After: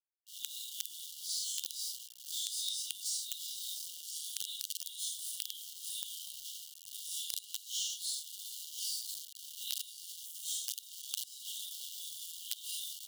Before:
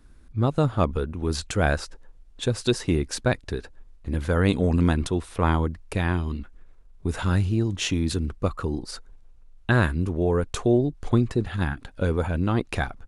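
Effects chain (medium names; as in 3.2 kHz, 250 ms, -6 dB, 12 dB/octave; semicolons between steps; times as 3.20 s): phase randomisation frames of 200 ms; feedback delay 1007 ms, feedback 27%, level -14.5 dB; in parallel at -9 dB: companded quantiser 2-bit; on the sum: crossover distortion -38 dBFS; brick-wall FIR high-pass 2.8 kHz; treble shelf 4.2 kHz +10 dB; compression 6:1, threshold -30 dBFS, peak gain reduction 13.5 dB; tape noise reduction on one side only decoder only; trim -4 dB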